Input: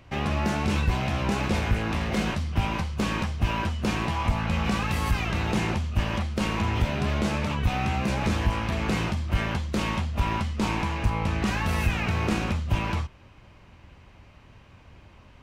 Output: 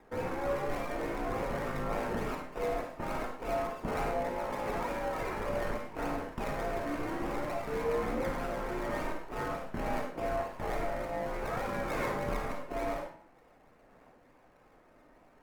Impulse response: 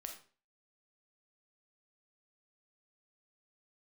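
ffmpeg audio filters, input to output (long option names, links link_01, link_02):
-filter_complex "[0:a]highpass=frequency=360:width_type=q:width=0.5412,highpass=frequency=360:width_type=q:width=1.307,lowpass=frequency=3400:width_type=q:width=0.5176,lowpass=frequency=3400:width_type=q:width=0.7071,lowpass=frequency=3400:width_type=q:width=1.932,afreqshift=-300,aphaser=in_gain=1:out_gain=1:delay=3.3:decay=0.32:speed=0.5:type=sinusoidal,acrossover=split=1800[link_01][link_02];[link_01]equalizer=frequency=78:width_type=o:width=0.87:gain=-8.5[link_03];[link_02]acrusher=samples=29:mix=1:aa=0.000001:lfo=1:lforange=17.4:lforate=3.4[link_04];[link_03][link_04]amix=inputs=2:normalize=0[link_05];[1:a]atrim=start_sample=2205,asetrate=36162,aresample=44100[link_06];[link_05][link_06]afir=irnorm=-1:irlink=0"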